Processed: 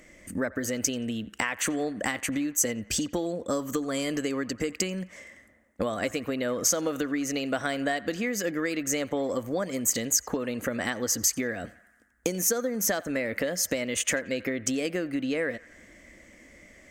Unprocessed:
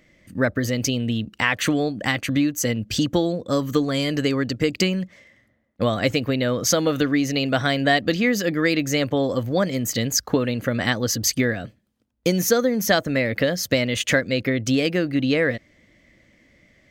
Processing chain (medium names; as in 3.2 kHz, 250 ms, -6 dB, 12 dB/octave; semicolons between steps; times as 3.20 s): compression, threshold -31 dBFS, peak gain reduction 17 dB; ten-band graphic EQ 125 Hz -12 dB, 4 kHz -9 dB, 8 kHz +10 dB; band-passed feedback delay 88 ms, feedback 72%, band-pass 1.4 kHz, level -18 dB; trim +6 dB